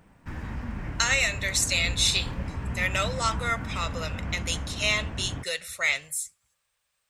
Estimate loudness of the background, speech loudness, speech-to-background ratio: −35.0 LKFS, −26.5 LKFS, 8.5 dB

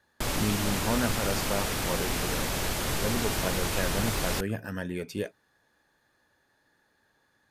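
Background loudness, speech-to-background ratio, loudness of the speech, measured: −29.5 LKFS, −4.5 dB, −34.0 LKFS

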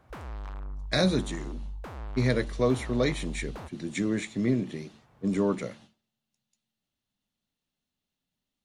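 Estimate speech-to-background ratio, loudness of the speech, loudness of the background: 12.0 dB, −29.0 LKFS, −41.0 LKFS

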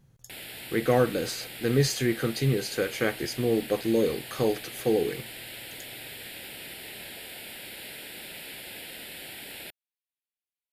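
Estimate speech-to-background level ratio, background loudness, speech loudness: 12.0 dB, −39.5 LKFS, −27.5 LKFS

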